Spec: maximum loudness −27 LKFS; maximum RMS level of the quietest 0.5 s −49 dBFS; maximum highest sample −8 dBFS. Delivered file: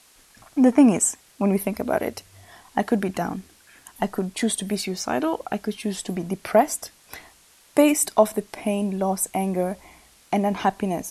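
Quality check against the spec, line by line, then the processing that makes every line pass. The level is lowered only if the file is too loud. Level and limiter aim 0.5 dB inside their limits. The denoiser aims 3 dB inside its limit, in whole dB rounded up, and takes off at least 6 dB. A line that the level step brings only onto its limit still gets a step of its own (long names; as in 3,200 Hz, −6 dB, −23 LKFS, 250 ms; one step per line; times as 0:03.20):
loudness −23.5 LKFS: out of spec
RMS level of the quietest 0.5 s −54 dBFS: in spec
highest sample −4.0 dBFS: out of spec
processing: level −4 dB
brickwall limiter −8.5 dBFS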